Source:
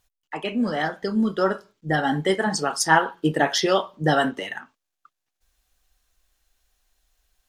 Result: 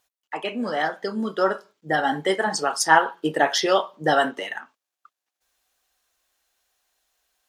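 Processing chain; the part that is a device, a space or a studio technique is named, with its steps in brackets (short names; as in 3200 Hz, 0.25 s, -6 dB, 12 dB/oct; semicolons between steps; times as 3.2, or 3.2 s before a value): filter by subtraction (in parallel: LPF 640 Hz 12 dB/oct + phase invert)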